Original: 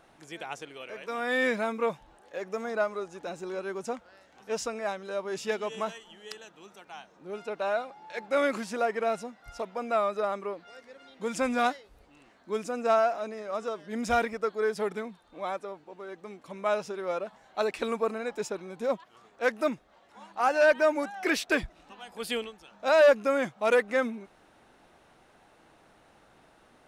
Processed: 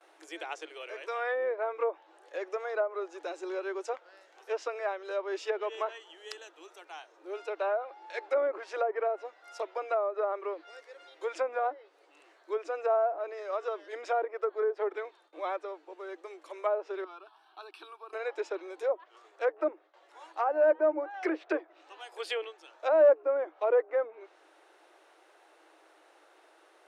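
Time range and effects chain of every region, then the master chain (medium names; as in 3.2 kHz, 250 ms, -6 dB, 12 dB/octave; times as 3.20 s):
17.04–18.13 s: static phaser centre 2 kHz, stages 6 + compression 2:1, threshold -51 dBFS
whole clip: gate with hold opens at -51 dBFS; low-pass that closes with the level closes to 790 Hz, closed at -23.5 dBFS; Chebyshev high-pass 310 Hz, order 8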